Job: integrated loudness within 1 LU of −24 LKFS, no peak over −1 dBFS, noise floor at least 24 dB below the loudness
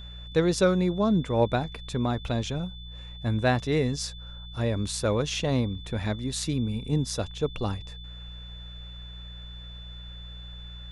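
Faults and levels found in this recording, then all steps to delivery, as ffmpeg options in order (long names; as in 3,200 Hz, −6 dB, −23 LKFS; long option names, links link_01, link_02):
mains hum 60 Hz; hum harmonics up to 180 Hz; level of the hum −40 dBFS; interfering tone 3,500 Hz; level of the tone −45 dBFS; integrated loudness −27.5 LKFS; sample peak −10.5 dBFS; target loudness −24.0 LKFS
→ -af "bandreject=frequency=60:width_type=h:width=4,bandreject=frequency=120:width_type=h:width=4,bandreject=frequency=180:width_type=h:width=4"
-af "bandreject=frequency=3500:width=30"
-af "volume=3.5dB"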